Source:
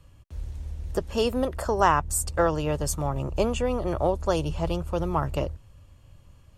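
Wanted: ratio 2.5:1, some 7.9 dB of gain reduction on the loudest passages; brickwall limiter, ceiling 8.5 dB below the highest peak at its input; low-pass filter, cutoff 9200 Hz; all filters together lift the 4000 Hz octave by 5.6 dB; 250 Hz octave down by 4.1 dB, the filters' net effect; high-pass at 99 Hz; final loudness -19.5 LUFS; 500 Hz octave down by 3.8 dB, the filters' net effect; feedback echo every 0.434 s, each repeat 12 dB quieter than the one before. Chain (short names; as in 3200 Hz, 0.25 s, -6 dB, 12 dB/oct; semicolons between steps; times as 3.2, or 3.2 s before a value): HPF 99 Hz; LPF 9200 Hz; bell 250 Hz -4.5 dB; bell 500 Hz -3.5 dB; bell 4000 Hz +8.5 dB; compressor 2.5:1, threshold -27 dBFS; limiter -23 dBFS; feedback echo 0.434 s, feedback 25%, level -12 dB; gain +15 dB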